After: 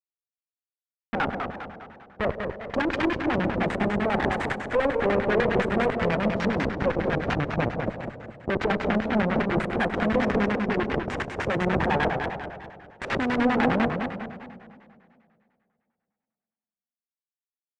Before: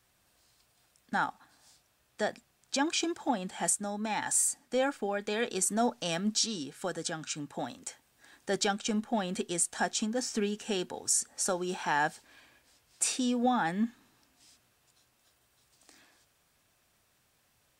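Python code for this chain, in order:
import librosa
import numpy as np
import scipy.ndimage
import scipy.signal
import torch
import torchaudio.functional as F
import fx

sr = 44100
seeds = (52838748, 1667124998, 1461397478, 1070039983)

p1 = fx.notch(x, sr, hz=380.0, q=12.0)
p2 = fx.schmitt(p1, sr, flips_db=-35.0)
p3 = p2 + fx.echo_single(p2, sr, ms=168, db=-11.0, dry=0)
p4 = fx.rev_plate(p3, sr, seeds[0], rt60_s=2.4, hf_ratio=1.0, predelay_ms=0, drr_db=6.5)
p5 = fx.filter_lfo_lowpass(p4, sr, shape='square', hz=10.0, low_hz=540.0, high_hz=1900.0, q=2.2)
p6 = scipy.signal.sosfilt(scipy.signal.butter(2, 63.0, 'highpass', fs=sr, output='sos'), p5)
p7 = fx.cheby_harmonics(p6, sr, harmonics=(2, 7), levels_db=(-7, -29), full_scale_db=-20.5)
p8 = fx.echo_warbled(p7, sr, ms=203, feedback_pct=41, rate_hz=2.8, cents=188, wet_db=-6)
y = p8 * librosa.db_to_amplitude(8.5)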